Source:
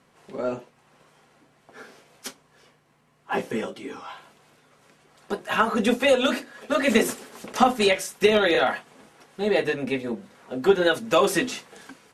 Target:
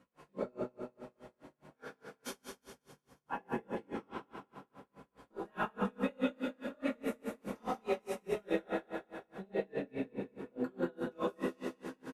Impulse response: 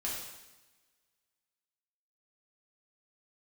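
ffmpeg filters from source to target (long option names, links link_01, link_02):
-filter_complex "[0:a]asetnsamples=nb_out_samples=441:pad=0,asendcmd='2.27 equalizer g -15',equalizer=frequency=6200:width=0.31:gain=-8.5,acompressor=threshold=-32dB:ratio=6,flanger=delay=17:depth=7.8:speed=0.77,aecho=1:1:183|366|549|732|915|1098|1281|1464:0.562|0.332|0.196|0.115|0.0681|0.0402|0.0237|0.014[link_01];[1:a]atrim=start_sample=2205,asetrate=66150,aresample=44100[link_02];[link_01][link_02]afir=irnorm=-1:irlink=0,aeval=exprs='val(0)*pow(10,-34*(0.5-0.5*cos(2*PI*4.8*n/s))/20)':channel_layout=same,volume=6.5dB"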